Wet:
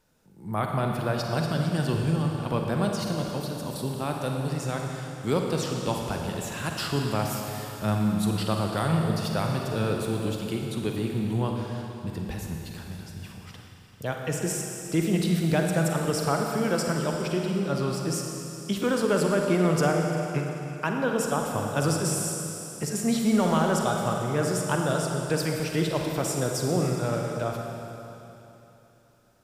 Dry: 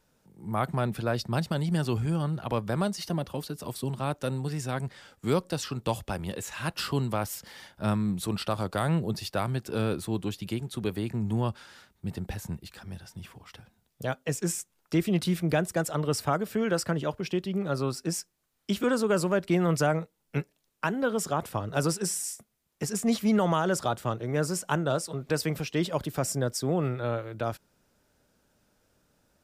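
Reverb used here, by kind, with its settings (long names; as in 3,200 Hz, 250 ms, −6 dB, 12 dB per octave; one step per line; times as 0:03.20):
four-comb reverb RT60 3.2 s, DRR 1 dB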